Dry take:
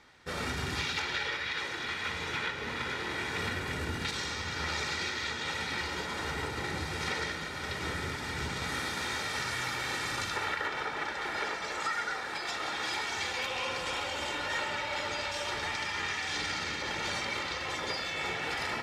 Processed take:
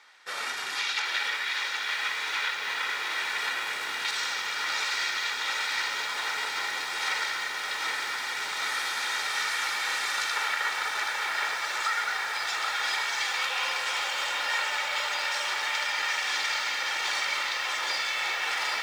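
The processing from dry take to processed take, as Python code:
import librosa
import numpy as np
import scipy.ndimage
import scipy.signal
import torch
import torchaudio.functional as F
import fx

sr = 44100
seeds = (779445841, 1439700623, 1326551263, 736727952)

y = scipy.signal.sosfilt(scipy.signal.butter(2, 900.0, 'highpass', fs=sr, output='sos'), x)
y = fx.echo_crushed(y, sr, ms=777, feedback_pct=80, bits=9, wet_db=-6.0)
y = y * librosa.db_to_amplitude(4.5)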